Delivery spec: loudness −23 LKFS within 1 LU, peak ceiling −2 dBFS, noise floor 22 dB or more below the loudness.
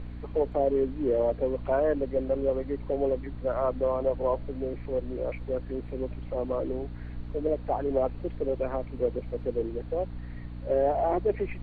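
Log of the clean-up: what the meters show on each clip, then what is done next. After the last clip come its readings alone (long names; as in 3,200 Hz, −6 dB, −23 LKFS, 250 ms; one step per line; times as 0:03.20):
mains hum 60 Hz; hum harmonics up to 300 Hz; level of the hum −37 dBFS; background noise floor −40 dBFS; target noise floor −52 dBFS; integrated loudness −29.5 LKFS; sample peak −14.0 dBFS; target loudness −23.0 LKFS
→ hum removal 60 Hz, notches 5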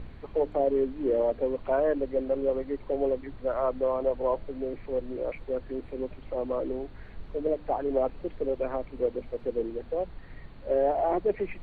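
mains hum none found; background noise floor −47 dBFS; target noise floor −52 dBFS
→ noise reduction from a noise print 6 dB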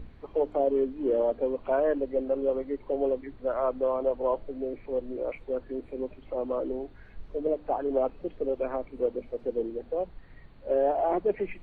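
background noise floor −51 dBFS; target noise floor −52 dBFS
→ noise reduction from a noise print 6 dB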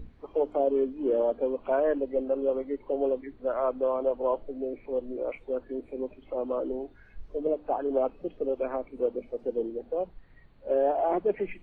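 background noise floor −55 dBFS; integrated loudness −30.0 LKFS; sample peak −14.5 dBFS; target loudness −23.0 LKFS
→ level +7 dB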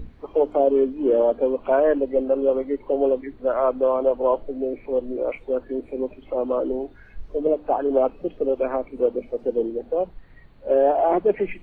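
integrated loudness −23.0 LKFS; sample peak −7.5 dBFS; background noise floor −48 dBFS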